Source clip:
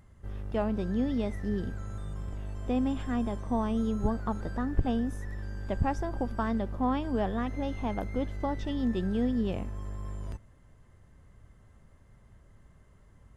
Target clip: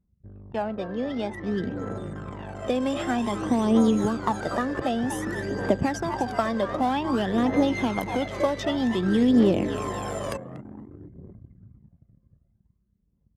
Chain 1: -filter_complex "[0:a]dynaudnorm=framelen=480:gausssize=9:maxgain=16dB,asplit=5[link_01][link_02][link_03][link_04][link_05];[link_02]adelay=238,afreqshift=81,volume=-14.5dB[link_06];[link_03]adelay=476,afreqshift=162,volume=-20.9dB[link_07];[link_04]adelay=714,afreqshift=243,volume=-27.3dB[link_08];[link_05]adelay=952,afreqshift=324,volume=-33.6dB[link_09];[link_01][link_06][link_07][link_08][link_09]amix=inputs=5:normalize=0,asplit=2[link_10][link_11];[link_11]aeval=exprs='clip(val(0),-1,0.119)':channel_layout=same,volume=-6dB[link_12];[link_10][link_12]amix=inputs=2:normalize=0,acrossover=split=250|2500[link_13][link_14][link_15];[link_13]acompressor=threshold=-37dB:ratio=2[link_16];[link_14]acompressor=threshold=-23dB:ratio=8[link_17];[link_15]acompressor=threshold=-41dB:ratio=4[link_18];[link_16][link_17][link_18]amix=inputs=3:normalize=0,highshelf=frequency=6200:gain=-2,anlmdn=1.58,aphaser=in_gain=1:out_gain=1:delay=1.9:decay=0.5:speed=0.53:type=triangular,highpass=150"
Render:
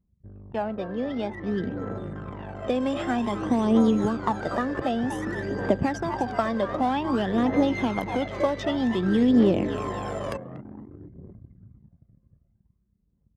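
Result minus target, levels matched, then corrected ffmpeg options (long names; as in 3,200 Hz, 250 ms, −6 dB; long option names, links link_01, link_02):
8,000 Hz band −6.5 dB
-filter_complex "[0:a]dynaudnorm=framelen=480:gausssize=9:maxgain=16dB,asplit=5[link_01][link_02][link_03][link_04][link_05];[link_02]adelay=238,afreqshift=81,volume=-14.5dB[link_06];[link_03]adelay=476,afreqshift=162,volume=-20.9dB[link_07];[link_04]adelay=714,afreqshift=243,volume=-27.3dB[link_08];[link_05]adelay=952,afreqshift=324,volume=-33.6dB[link_09];[link_01][link_06][link_07][link_08][link_09]amix=inputs=5:normalize=0,asplit=2[link_10][link_11];[link_11]aeval=exprs='clip(val(0),-1,0.119)':channel_layout=same,volume=-6dB[link_12];[link_10][link_12]amix=inputs=2:normalize=0,acrossover=split=250|2500[link_13][link_14][link_15];[link_13]acompressor=threshold=-37dB:ratio=2[link_16];[link_14]acompressor=threshold=-23dB:ratio=8[link_17];[link_15]acompressor=threshold=-41dB:ratio=4[link_18];[link_16][link_17][link_18]amix=inputs=3:normalize=0,highshelf=frequency=6200:gain=6,anlmdn=1.58,aphaser=in_gain=1:out_gain=1:delay=1.9:decay=0.5:speed=0.53:type=triangular,highpass=150"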